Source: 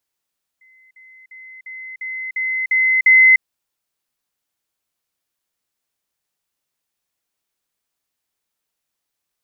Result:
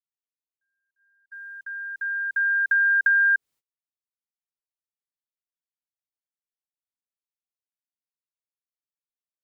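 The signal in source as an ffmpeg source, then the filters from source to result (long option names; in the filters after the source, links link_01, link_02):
-f lavfi -i "aevalsrc='pow(10,(-48.5+6*floor(t/0.35))/20)*sin(2*PI*2050*t)*clip(min(mod(t,0.35),0.3-mod(t,0.35))/0.005,0,1)':duration=2.8:sample_rate=44100"
-af "afreqshift=-450,agate=range=-30dB:threshold=-43dB:ratio=16:detection=peak,acompressor=threshold=-18dB:ratio=6"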